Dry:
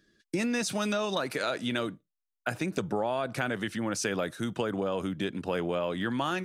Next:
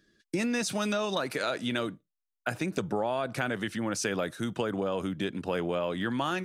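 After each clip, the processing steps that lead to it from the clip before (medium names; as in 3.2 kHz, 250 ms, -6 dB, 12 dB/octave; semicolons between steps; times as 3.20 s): no audible change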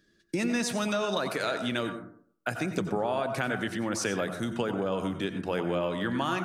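plate-style reverb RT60 0.57 s, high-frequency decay 0.3×, pre-delay 80 ms, DRR 7 dB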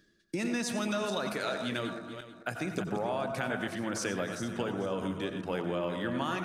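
backward echo that repeats 221 ms, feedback 44%, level -8.5 dB; reverse; upward compressor, threshold -36 dBFS; reverse; trim -4 dB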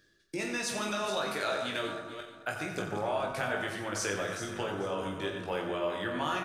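peaking EQ 220 Hz -10.5 dB 0.89 oct; reverse bouncing-ball echo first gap 20 ms, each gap 1.4×, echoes 5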